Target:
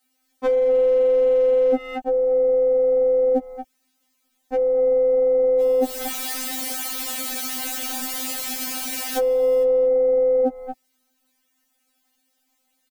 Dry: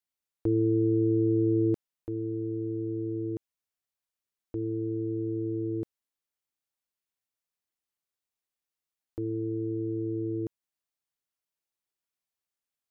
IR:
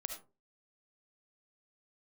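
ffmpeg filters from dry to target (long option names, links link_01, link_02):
-filter_complex "[0:a]asettb=1/sr,asplit=3[link_01][link_02][link_03];[link_01]atrim=end=5.604[link_04];[link_02]atrim=start=5.6:end=9.63,asetpts=PTS-STARTPTS,afade=type=in:duration=0.004:curve=qsin,afade=type=out:start_time=4.026:duration=0.004:curve=qsin,aeval=exprs='val(0)+0.5*0.00891*sgn(val(0))':channel_layout=same[link_05];[link_03]atrim=start=9.626[link_06];[link_04][link_05]acrossfade=duration=0.004:curve1=hsin:curve2=qsin[link_07];[link_07][link_06]acrossfade=duration=0.004:curve1=qsin:curve2=hsin,lowshelf=frequency=67:gain=-4.5,aecho=1:1:5.8:0.91,aeval=exprs='0.168*(cos(1*acos(clip(val(0)/0.168,-1,1)))-cos(1*PI/2))+0.0266*(cos(3*acos(clip(val(0)/0.168,-1,1)))-cos(3*PI/2))+0.00237*(cos(7*acos(clip(val(0)/0.168,-1,1)))-cos(7*PI/2))':channel_layout=same,asuperstop=centerf=670:order=8:qfactor=1.6,asplit=2[link_08][link_09];[link_09]adelay=230,highpass=300,lowpass=3400,asoftclip=type=hard:threshold=-24.5dB,volume=-9dB[link_10];[link_08][link_10]amix=inputs=2:normalize=0,aeval=exprs='val(0)*sin(2*PI*400*n/s)':channel_layout=same,equalizer=frequency=230:width=0.59:gain=10.5,acompressor=threshold=-40dB:ratio=4,asoftclip=type=hard:threshold=-31dB,alimiter=level_in=34.5dB:limit=-1dB:release=50:level=0:latency=1,afftfilt=real='re*3.46*eq(mod(b,12),0)':imag='im*3.46*eq(mod(b,12),0)':win_size=2048:overlap=0.75,volume=-4dB"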